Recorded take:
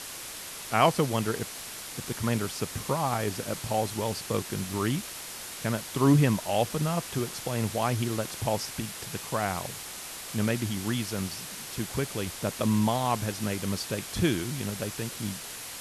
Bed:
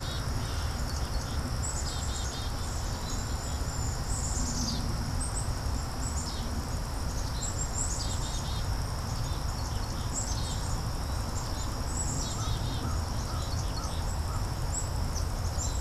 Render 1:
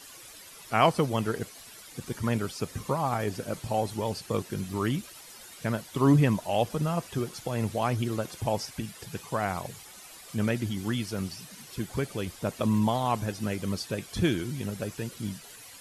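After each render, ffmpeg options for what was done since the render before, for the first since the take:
-af "afftdn=nr=12:nf=-40"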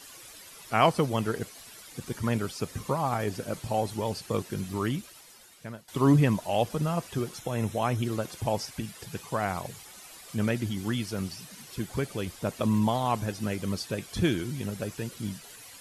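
-filter_complex "[0:a]asettb=1/sr,asplit=3[a][b][c];[a]atrim=end=7.364[d];[b]atrim=start=7.36:end=8.03,asetpts=PTS-STARTPTS,afade=t=in:d=0.004:c=qsin,afade=t=out:st=0.666:d=0.004:c=qsin,asuperstop=centerf=4600:order=12:qfactor=6.3[e];[c]atrim=start=8.026[f];[d][e]acrossfade=d=0.004:c1=hsin:c2=qsin[g];[g][f]acrossfade=d=0.004:c1=qsin:c2=hsin,asplit=2[h][i];[h]atrim=end=5.88,asetpts=PTS-STARTPTS,afade=t=out:st=4.71:d=1.17:silence=0.158489[j];[i]atrim=start=5.88,asetpts=PTS-STARTPTS,afade=t=in:d=0.004:c=hsin:silence=0.158489[k];[j][k]concat=n=2:v=0:a=1"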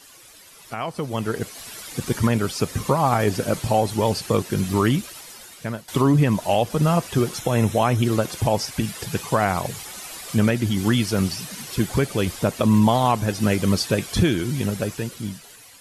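-af "alimiter=limit=-19.5dB:level=0:latency=1:release=352,dynaudnorm=f=290:g=9:m=11.5dB"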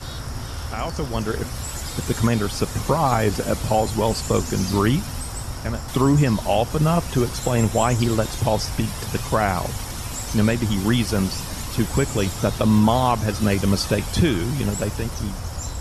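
-filter_complex "[1:a]volume=1.5dB[a];[0:a][a]amix=inputs=2:normalize=0"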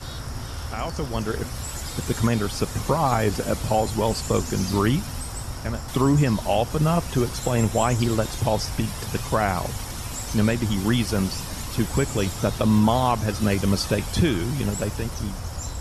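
-af "volume=-2dB"

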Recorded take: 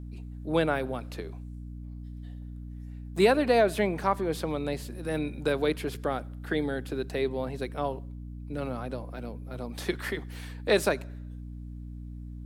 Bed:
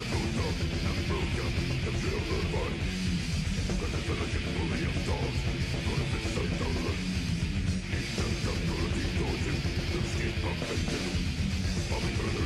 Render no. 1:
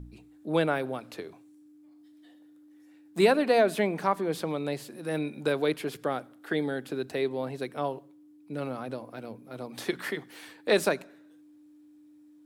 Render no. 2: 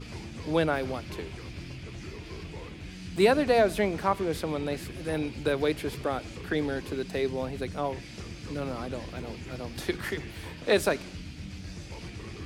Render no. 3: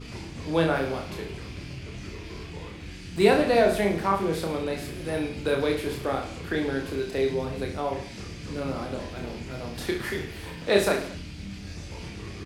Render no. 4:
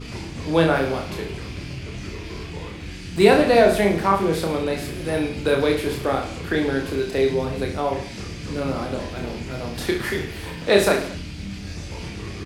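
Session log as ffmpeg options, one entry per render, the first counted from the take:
-af "bandreject=f=60:t=h:w=4,bandreject=f=120:t=h:w=4,bandreject=f=180:t=h:w=4,bandreject=f=240:t=h:w=4"
-filter_complex "[1:a]volume=-10.5dB[a];[0:a][a]amix=inputs=2:normalize=0"
-filter_complex "[0:a]asplit=2[a][b];[b]adelay=25,volume=-11.5dB[c];[a][c]amix=inputs=2:normalize=0,aecho=1:1:30|66|109.2|161|223.2:0.631|0.398|0.251|0.158|0.1"
-af "volume=5.5dB,alimiter=limit=-3dB:level=0:latency=1"

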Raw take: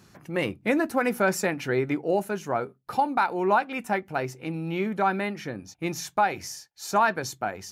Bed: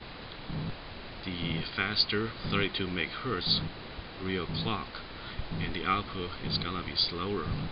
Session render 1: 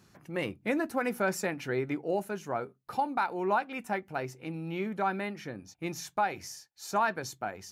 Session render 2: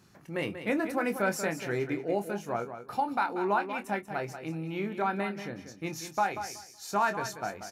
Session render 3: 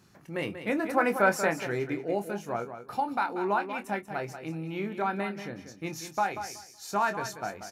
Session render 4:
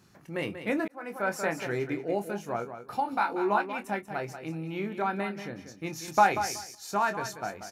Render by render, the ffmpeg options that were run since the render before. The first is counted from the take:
-af "volume=-6dB"
-filter_complex "[0:a]asplit=2[a][b];[b]adelay=25,volume=-9dB[c];[a][c]amix=inputs=2:normalize=0,aecho=1:1:187|374|561:0.316|0.0632|0.0126"
-filter_complex "[0:a]asettb=1/sr,asplit=3[a][b][c];[a]atrim=end=0.894[d];[b]atrim=start=0.89:end=1.67,asetpts=PTS-STARTPTS,afade=t=in:d=0.004:c=qsin,afade=t=out:st=0.776:d=0.004:c=qsin,equalizer=f=1k:t=o:w=2.2:g=8[e];[c]atrim=start=1.666[f];[d][e]acrossfade=d=0.004:c1=hsin:c2=qsin[g];[g][f]acrossfade=d=0.004:c1=qsin:c2=hsin"
-filter_complex "[0:a]asettb=1/sr,asplit=3[a][b][c];[a]atrim=end=3.034[d];[b]atrim=start=3.03:end=3.62,asetpts=PTS-STARTPTS,afade=t=in:d=0.004:c=qsin,afade=t=out:st=0.586:d=0.004:c=qsin,asplit=2[e][f];[f]adelay=19,volume=-4.5dB[g];[e][g]amix=inputs=2:normalize=0,atrim=end_sample=26019[h];[c]atrim=start=3.616[i];[d][h]acrossfade=d=0.004:c1=hsin:c2=qsin[j];[j][i]acrossfade=d=0.004:c1=qsin:c2=hsin,asplit=4[k][l][m][n];[k]atrim=end=0.88,asetpts=PTS-STARTPTS,afade=t=out:st=0.876:d=0.004:c=hsin[o];[l]atrim=start=0.88:end=6.082,asetpts=PTS-STARTPTS,afade=t=in:d=0.82[p];[m]atrim=start=6.078:end=6.752,asetpts=PTS-STARTPTS,volume=7dB[q];[n]atrim=start=6.748[r];[o][p]concat=n=2:v=0:a=1[s];[s][q]acrossfade=d=0.004:c1=hsin:c2=hsin[t];[t][r]acrossfade=d=0.004:c1=hsin:c2=hsin"

